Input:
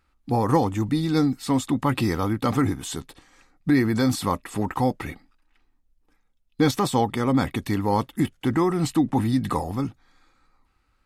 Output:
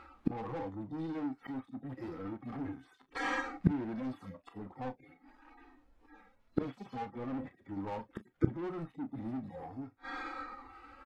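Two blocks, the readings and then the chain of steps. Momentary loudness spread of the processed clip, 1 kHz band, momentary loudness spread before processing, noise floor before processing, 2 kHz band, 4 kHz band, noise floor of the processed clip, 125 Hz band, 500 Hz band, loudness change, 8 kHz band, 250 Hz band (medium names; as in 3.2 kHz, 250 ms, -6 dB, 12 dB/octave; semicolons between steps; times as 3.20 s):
14 LU, -16.0 dB, 8 LU, -68 dBFS, -9.5 dB, -20.0 dB, -69 dBFS, -15.5 dB, -16.0 dB, -16.0 dB, under -25 dB, -15.0 dB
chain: harmonic-percussive separation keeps harmonic; treble shelf 3.4 kHz -10 dB; overdrive pedal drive 30 dB, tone 1.2 kHz, clips at -8.5 dBFS; inverted gate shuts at -27 dBFS, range -31 dB; on a send: early reflections 31 ms -12.5 dB, 41 ms -15 dB; on the sum: upward expansion 1.5:1, over -59 dBFS; trim +13.5 dB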